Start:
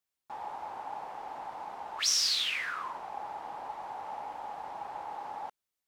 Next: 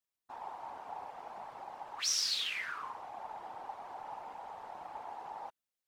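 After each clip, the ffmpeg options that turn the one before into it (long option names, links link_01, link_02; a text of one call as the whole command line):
ffmpeg -i in.wav -af "afftfilt=real='hypot(re,im)*cos(2*PI*random(0))':imag='hypot(re,im)*sin(2*PI*random(1))':win_size=512:overlap=0.75,volume=1dB" out.wav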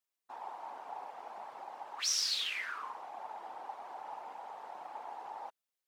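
ffmpeg -i in.wav -af "highpass=270" out.wav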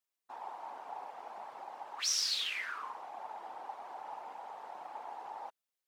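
ffmpeg -i in.wav -af anull out.wav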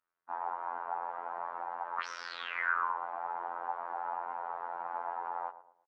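ffmpeg -i in.wav -filter_complex "[0:a]lowpass=frequency=1400:width_type=q:width=3,afftfilt=real='hypot(re,im)*cos(PI*b)':imag='0':win_size=2048:overlap=0.75,asplit=2[link_01][link_02];[link_02]adelay=114,lowpass=frequency=850:poles=1,volume=-11.5dB,asplit=2[link_03][link_04];[link_04]adelay=114,lowpass=frequency=850:poles=1,volume=0.44,asplit=2[link_05][link_06];[link_06]adelay=114,lowpass=frequency=850:poles=1,volume=0.44,asplit=2[link_07][link_08];[link_08]adelay=114,lowpass=frequency=850:poles=1,volume=0.44[link_09];[link_01][link_03][link_05][link_07][link_09]amix=inputs=5:normalize=0,volume=7dB" out.wav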